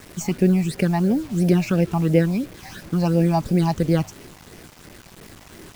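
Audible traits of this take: phasing stages 8, 2.9 Hz, lowest notch 430–1200 Hz; a quantiser's noise floor 8-bit, dither none

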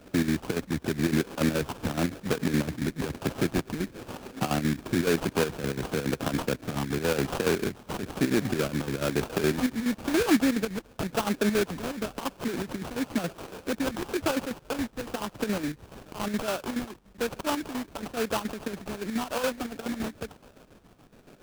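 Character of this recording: phasing stages 4, 0.99 Hz, lowest notch 630–2800 Hz; chopped level 7.1 Hz, depth 60%, duty 60%; aliases and images of a low sample rate 2 kHz, jitter 20%

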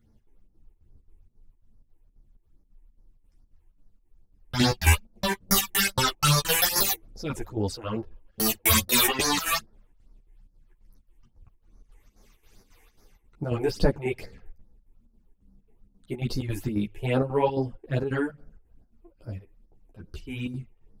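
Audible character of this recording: phasing stages 8, 2.4 Hz, lowest notch 160–3000 Hz; chopped level 3.7 Hz, depth 65%, duty 70%; a shimmering, thickened sound

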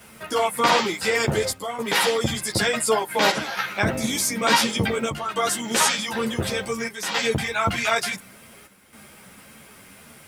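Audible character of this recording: a quantiser's noise floor 10-bit, dither triangular; chopped level 0.56 Hz, depth 60%, duty 85%; a shimmering, thickened sound

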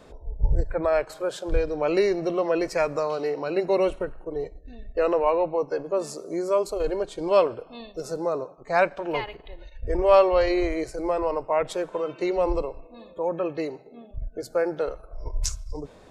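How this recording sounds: noise floor -50 dBFS; spectral tilt -5.0 dB/octave

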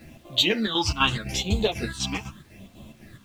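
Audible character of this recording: chopped level 4 Hz, depth 65%, duty 65%; phasing stages 8, 0.81 Hz, lowest notch 510–1700 Hz; a quantiser's noise floor 10-bit, dither none; a shimmering, thickened sound

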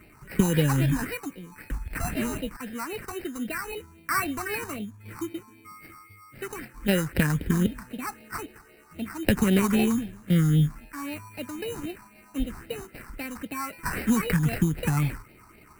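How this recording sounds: aliases and images of a low sample rate 3.4 kHz, jitter 0%; phasing stages 4, 3.8 Hz, lowest notch 520–1100 Hz

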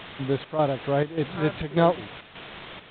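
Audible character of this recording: a quantiser's noise floor 6-bit, dither triangular; chopped level 1.7 Hz, depth 60%, duty 75%; A-law

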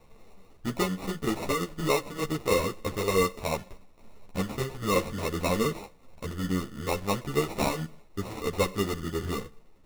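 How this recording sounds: aliases and images of a low sample rate 1.6 kHz, jitter 0%; a shimmering, thickened sound

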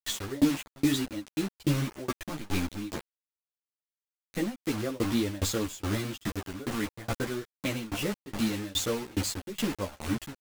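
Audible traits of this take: a quantiser's noise floor 6-bit, dither none; tremolo saw down 2.4 Hz, depth 100%; a shimmering, thickened sound

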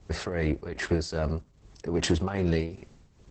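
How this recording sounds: tremolo triangle 2.5 Hz, depth 75%; Opus

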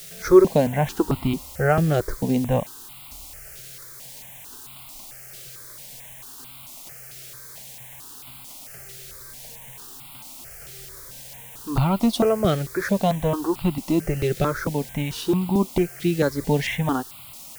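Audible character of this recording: a quantiser's noise floor 8-bit, dither triangular; notches that jump at a steady rate 4.5 Hz 260–1700 Hz

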